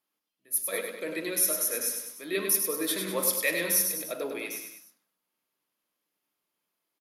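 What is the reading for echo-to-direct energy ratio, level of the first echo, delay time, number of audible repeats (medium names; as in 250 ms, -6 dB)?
-5.0 dB, -6.0 dB, 100 ms, 3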